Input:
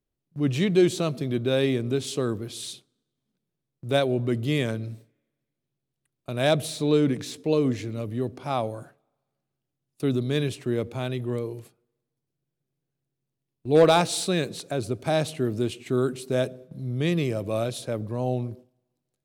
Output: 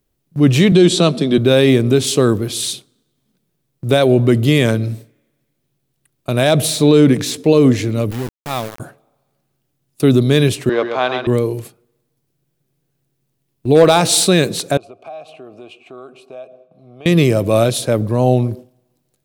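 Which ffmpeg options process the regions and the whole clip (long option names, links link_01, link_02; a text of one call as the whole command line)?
ffmpeg -i in.wav -filter_complex "[0:a]asettb=1/sr,asplit=3[link_01][link_02][link_03];[link_01]atrim=end=0.724[link_04];[link_02]atrim=start=0.72:end=1.38,asetpts=PTS-STARTPTS,afade=type=in:duration=0.004:curve=qsin,afade=type=out:start_time=0.656:duration=0.004:curve=qsin,highpass=frequency=170:width=0.5412,highpass=frequency=170:width=1.3066,equalizer=frequency=180:width_type=q:width=4:gain=6,equalizer=frequency=2100:width_type=q:width=4:gain=-3,equalizer=frequency=3600:width_type=q:width=4:gain=6,lowpass=frequency=9400:width=0.5412,lowpass=frequency=9400:width=1.3066,bandreject=frequency=6500:width=12[link_05];[link_03]atrim=start=1.376[link_06];[link_04][link_05]acrossfade=duration=0.004:curve1=hsin:curve2=qsin[link_07];[link_07][link_06]acrossfade=duration=0.004:curve1=qsin:curve2=hsin,asettb=1/sr,asplit=3[link_08][link_09][link_10];[link_08]atrim=end=8.114[link_11];[link_09]atrim=start=8.11:end=8.8,asetpts=PTS-STARTPTS,afade=type=in:duration=0.004:curve=qsin,afade=type=out:start_time=0.686:duration=0.004:curve=qsin,lowpass=frequency=3500:poles=1,equalizer=frequency=440:width=0.33:gain=-11.5,aeval=exprs='val(0)*gte(abs(val(0)),0.0133)':channel_layout=same[link_12];[link_10]atrim=start=8.796[link_13];[link_11][link_12]acrossfade=duration=0.004:curve1=hsin:curve2=qsin[link_14];[link_14][link_13]acrossfade=duration=0.004:curve1=qsin:curve2=hsin,asettb=1/sr,asplit=3[link_15][link_16][link_17];[link_15]atrim=end=10.694[link_18];[link_16]atrim=start=10.69:end=11.27,asetpts=PTS-STARTPTS,afade=type=in:duration=0.004:curve=qsin,afade=type=out:start_time=0.576:duration=0.004:curve=qsin,aeval=exprs='sgn(val(0))*max(abs(val(0))-0.00316,0)':channel_layout=same,highpass=430,equalizer=frequency=740:width_type=q:width=4:gain=6,equalizer=frequency=1100:width_type=q:width=4:gain=7,equalizer=frequency=1600:width_type=q:width=4:gain=5,lowpass=frequency=5000:width=0.5412,lowpass=frequency=5000:width=1.3066,aecho=1:1:132:0.473,atrim=end_sample=25578[link_19];[link_17]atrim=start=11.266[link_20];[link_18][link_19]acrossfade=duration=0.004:curve1=hsin:curve2=qsin[link_21];[link_21][link_20]acrossfade=duration=0.004:curve1=qsin:curve2=hsin,asettb=1/sr,asplit=3[link_22][link_23][link_24];[link_22]atrim=end=14.774[link_25];[link_23]atrim=start=14.77:end=17.06,asetpts=PTS-STARTPTS,afade=type=in:duration=0.004:curve=qsin,afade=type=out:start_time=2.286:duration=0.004:curve=qsin,asplit=3[link_26][link_27][link_28];[link_26]bandpass=frequency=730:width_type=q:width=8,volume=0dB[link_29];[link_27]bandpass=frequency=1090:width_type=q:width=8,volume=-6dB[link_30];[link_28]bandpass=frequency=2440:width_type=q:width=8,volume=-9dB[link_31];[link_29][link_30][link_31]amix=inputs=3:normalize=0,acompressor=threshold=-47dB:ratio=3:attack=3.2:release=140:knee=1:detection=peak[link_32];[link_24]atrim=start=17.056[link_33];[link_25][link_32]acrossfade=duration=0.004:curve1=hsin:curve2=qsin[link_34];[link_34][link_33]acrossfade=duration=0.004:curve1=qsin:curve2=hsin,highshelf=frequency=11000:gain=6.5,alimiter=level_in=14.5dB:limit=-1dB:release=50:level=0:latency=1,volume=-1dB" out.wav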